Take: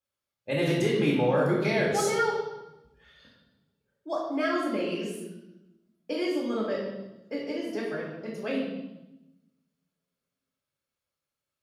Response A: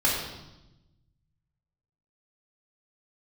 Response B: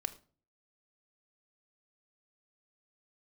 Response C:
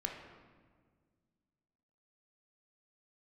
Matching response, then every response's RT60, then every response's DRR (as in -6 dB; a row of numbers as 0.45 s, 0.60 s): A; 0.95 s, no single decay rate, 1.7 s; -6.0 dB, 11.5 dB, 1.0 dB